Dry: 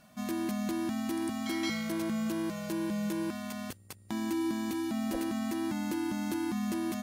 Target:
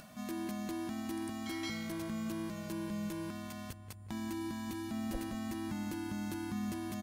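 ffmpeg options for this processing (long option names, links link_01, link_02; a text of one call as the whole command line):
ffmpeg -i in.wav -filter_complex "[0:a]asubboost=boost=5:cutoff=130,asplit=2[link_01][link_02];[link_02]adelay=181,lowpass=frequency=1900:poles=1,volume=-12dB,asplit=2[link_03][link_04];[link_04]adelay=181,lowpass=frequency=1900:poles=1,volume=0.47,asplit=2[link_05][link_06];[link_06]adelay=181,lowpass=frequency=1900:poles=1,volume=0.47,asplit=2[link_07][link_08];[link_08]adelay=181,lowpass=frequency=1900:poles=1,volume=0.47,asplit=2[link_09][link_10];[link_10]adelay=181,lowpass=frequency=1900:poles=1,volume=0.47[link_11];[link_03][link_05][link_07][link_09][link_11]amix=inputs=5:normalize=0[link_12];[link_01][link_12]amix=inputs=2:normalize=0,acompressor=mode=upward:threshold=-39dB:ratio=2.5,volume=-5.5dB" out.wav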